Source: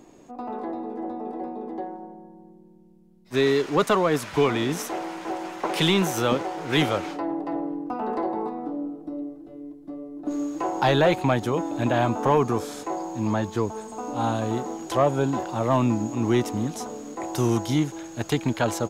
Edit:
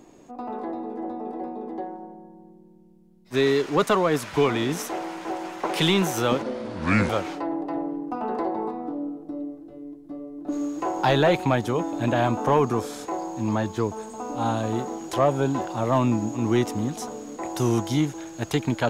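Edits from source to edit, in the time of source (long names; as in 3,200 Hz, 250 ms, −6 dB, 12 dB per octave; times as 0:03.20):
0:06.42–0:06.88: play speed 68%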